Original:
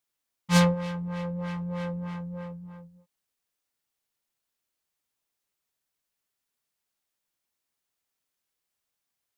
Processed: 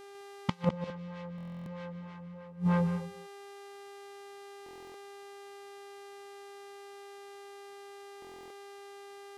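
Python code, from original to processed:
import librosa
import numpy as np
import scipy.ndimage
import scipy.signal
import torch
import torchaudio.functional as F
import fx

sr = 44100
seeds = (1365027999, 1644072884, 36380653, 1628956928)

p1 = scipy.signal.sosfilt(scipy.signal.butter(2, 6000.0, 'lowpass', fs=sr, output='sos'), x)
p2 = fx.low_shelf(p1, sr, hz=63.0, db=-11.5)
p3 = fx.over_compress(p2, sr, threshold_db=-29.0, ratio=-0.5)
p4 = fx.dmg_buzz(p3, sr, base_hz=400.0, harmonics=32, level_db=-67.0, tilt_db=-7, odd_only=False)
p5 = fx.gate_flip(p4, sr, shuts_db=-32.0, range_db=-28)
p6 = p5 + fx.echo_multitap(p5, sr, ms=(150, 209), db=(-12.0, -13.5), dry=0)
p7 = fx.buffer_glitch(p6, sr, at_s=(1.36, 4.64, 8.2), block=1024, repeats=12)
y = p7 * 10.0 ** (17.0 / 20.0)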